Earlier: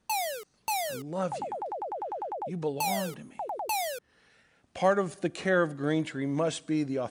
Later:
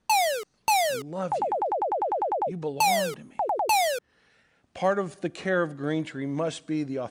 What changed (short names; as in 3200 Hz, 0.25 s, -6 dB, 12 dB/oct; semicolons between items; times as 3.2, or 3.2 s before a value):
background +8.5 dB; master: add high shelf 12000 Hz -12 dB